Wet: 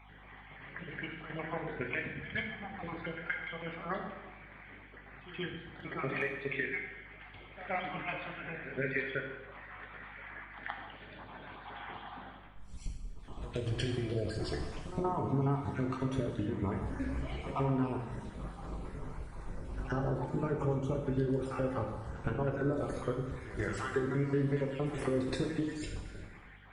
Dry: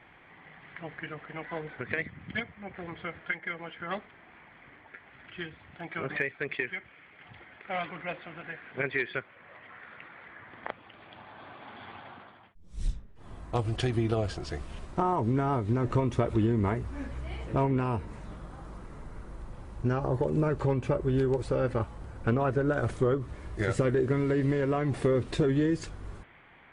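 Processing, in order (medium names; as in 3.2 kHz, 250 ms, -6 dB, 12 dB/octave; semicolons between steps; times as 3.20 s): random holes in the spectrogram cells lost 39%; compression, threshold -32 dBFS, peak gain reduction 10.5 dB; pre-echo 123 ms -14 dB; plate-style reverb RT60 1.2 s, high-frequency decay 0.85×, DRR 1.5 dB; hum 50 Hz, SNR 22 dB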